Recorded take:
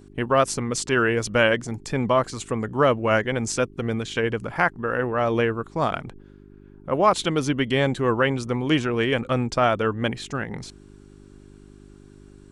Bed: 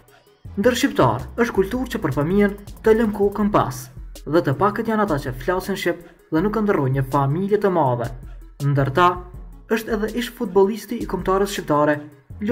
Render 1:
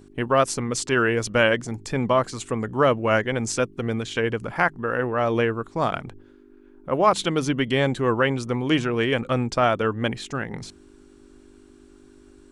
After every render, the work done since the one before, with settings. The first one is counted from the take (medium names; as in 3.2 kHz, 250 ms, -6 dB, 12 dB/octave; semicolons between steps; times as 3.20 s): de-hum 50 Hz, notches 4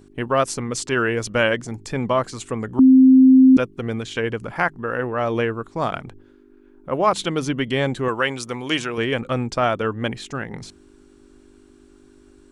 2.79–3.57 s: bleep 261 Hz -7 dBFS; 8.08–8.98 s: tilt EQ +2.5 dB/octave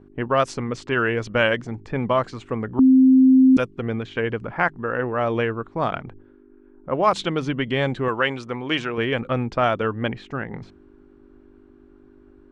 level-controlled noise filter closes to 1.5 kHz, open at -10 dBFS; dynamic bell 310 Hz, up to -3 dB, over -23 dBFS, Q 1.2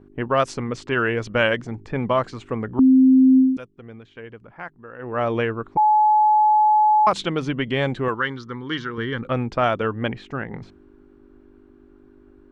3.38–5.18 s: dip -14.5 dB, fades 0.19 s; 5.77–7.07 s: bleep 853 Hz -12.5 dBFS; 8.14–9.23 s: static phaser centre 2.5 kHz, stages 6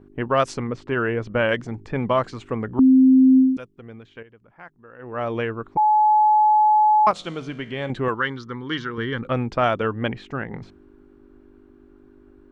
0.67–1.49 s: low-pass 1.4 kHz 6 dB/octave; 4.23–6.13 s: fade in, from -12 dB; 7.11–7.90 s: feedback comb 56 Hz, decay 1.4 s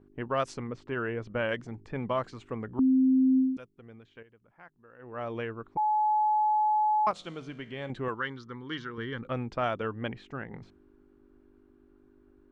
trim -9.5 dB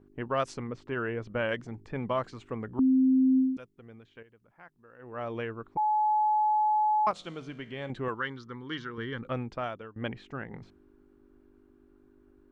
9.35–9.96 s: fade out, to -20.5 dB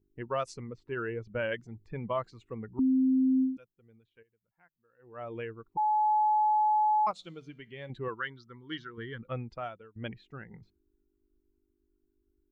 expander on every frequency bin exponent 1.5; peak limiter -21.5 dBFS, peak gain reduction 3 dB